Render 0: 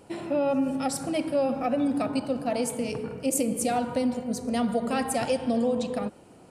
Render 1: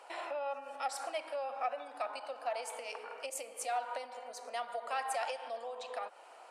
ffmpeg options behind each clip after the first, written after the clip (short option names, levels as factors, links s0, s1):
-af "lowpass=f=2300:p=1,acompressor=threshold=0.02:ratio=6,highpass=f=710:w=0.5412,highpass=f=710:w=1.3066,volume=2.11"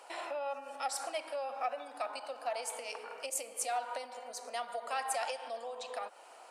-af "bass=f=250:g=6,treble=f=4000:g=6"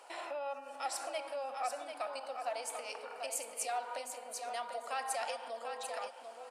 -af "aecho=1:1:742|1484|2226:0.447|0.0759|0.0129,volume=0.794"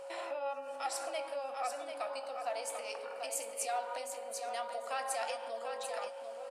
-filter_complex "[0:a]aeval=exprs='val(0)+0.00562*sin(2*PI*550*n/s)':c=same,asplit=2[s0][s1];[s1]adelay=18,volume=0.266[s2];[s0][s2]amix=inputs=2:normalize=0"